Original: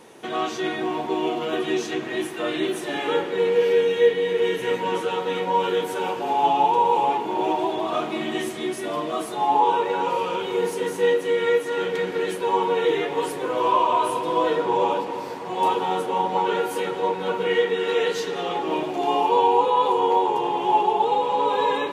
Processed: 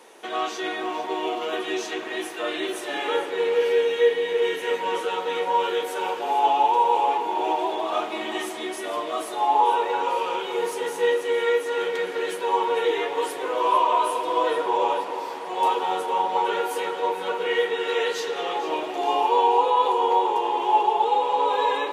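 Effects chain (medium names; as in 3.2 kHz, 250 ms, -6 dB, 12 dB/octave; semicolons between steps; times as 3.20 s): high-pass 430 Hz 12 dB/octave; on a send: two-band feedback delay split 870 Hz, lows 334 ms, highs 452 ms, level -14 dB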